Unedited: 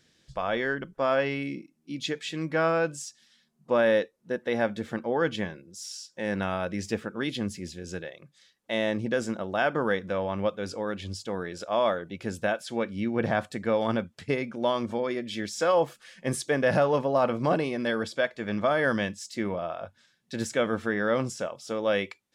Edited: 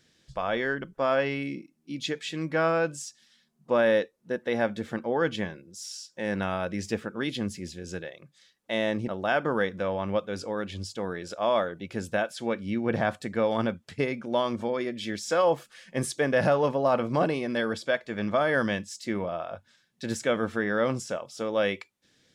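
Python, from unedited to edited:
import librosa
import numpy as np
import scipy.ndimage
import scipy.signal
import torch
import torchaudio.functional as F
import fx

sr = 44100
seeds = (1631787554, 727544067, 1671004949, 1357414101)

y = fx.edit(x, sr, fx.cut(start_s=9.08, length_s=0.3), tone=tone)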